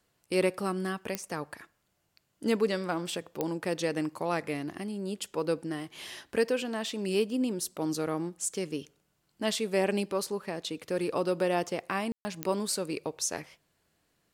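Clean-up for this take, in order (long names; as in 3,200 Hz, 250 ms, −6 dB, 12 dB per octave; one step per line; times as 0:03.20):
click removal
ambience match 0:12.12–0:12.25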